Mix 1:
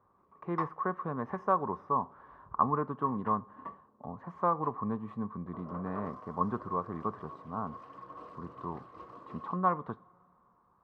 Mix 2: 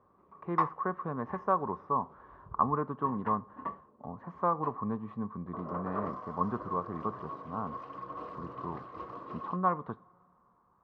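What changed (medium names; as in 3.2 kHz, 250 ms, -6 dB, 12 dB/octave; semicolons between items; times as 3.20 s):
background +6.5 dB; master: add distance through air 80 m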